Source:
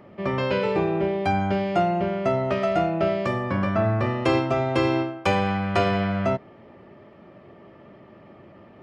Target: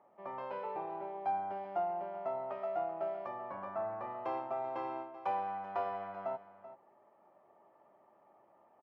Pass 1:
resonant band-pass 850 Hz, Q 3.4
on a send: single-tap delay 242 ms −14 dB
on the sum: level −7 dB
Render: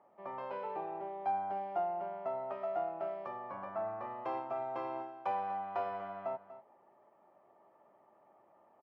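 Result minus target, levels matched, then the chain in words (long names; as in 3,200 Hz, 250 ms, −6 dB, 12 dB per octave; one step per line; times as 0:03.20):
echo 143 ms early
resonant band-pass 850 Hz, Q 3.4
on a send: single-tap delay 385 ms −14 dB
on the sum: level −7 dB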